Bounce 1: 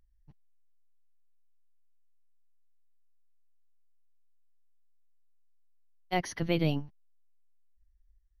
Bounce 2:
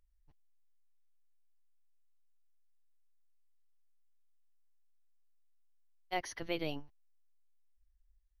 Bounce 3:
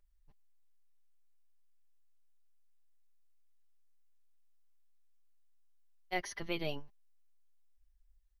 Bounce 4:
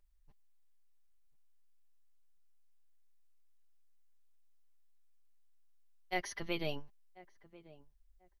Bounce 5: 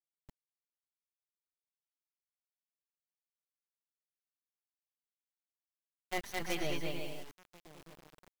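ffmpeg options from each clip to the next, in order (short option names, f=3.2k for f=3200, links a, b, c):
-af "equalizer=f=170:t=o:w=1.2:g=-14,volume=-4.5dB"
-af "aecho=1:1:5:0.48"
-filter_complex "[0:a]asplit=2[a][b];[b]adelay=1040,lowpass=f=1k:p=1,volume=-18dB,asplit=2[c][d];[d]adelay=1040,lowpass=f=1k:p=1,volume=0.27[e];[a][c][e]amix=inputs=3:normalize=0"
-af "aecho=1:1:210|346.5|435.2|492.9|530.4:0.631|0.398|0.251|0.158|0.1,acrusher=bits=6:dc=4:mix=0:aa=0.000001,volume=26dB,asoftclip=hard,volume=-26dB,volume=1dB"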